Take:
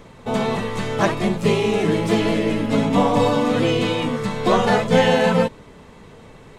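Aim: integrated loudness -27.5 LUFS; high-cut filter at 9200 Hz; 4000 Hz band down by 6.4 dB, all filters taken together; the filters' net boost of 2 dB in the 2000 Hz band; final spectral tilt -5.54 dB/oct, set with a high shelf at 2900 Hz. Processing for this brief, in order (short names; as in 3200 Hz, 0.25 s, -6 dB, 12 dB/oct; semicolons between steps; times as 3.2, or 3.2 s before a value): LPF 9200 Hz; bell 2000 Hz +7 dB; high shelf 2900 Hz -8.5 dB; bell 4000 Hz -6 dB; gain -8 dB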